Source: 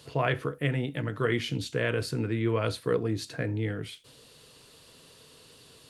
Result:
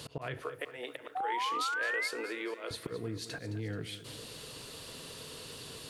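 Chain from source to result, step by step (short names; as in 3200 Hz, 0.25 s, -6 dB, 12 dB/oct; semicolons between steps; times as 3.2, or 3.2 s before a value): 0.42–2.71 HPF 440 Hz 24 dB/oct; auto swell 0.412 s; compressor 6:1, threshold -44 dBFS, peak gain reduction 14 dB; 1.15–2.08 painted sound rise 730–2200 Hz -42 dBFS; lo-fi delay 0.216 s, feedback 55%, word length 12-bit, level -13.5 dB; gain +8 dB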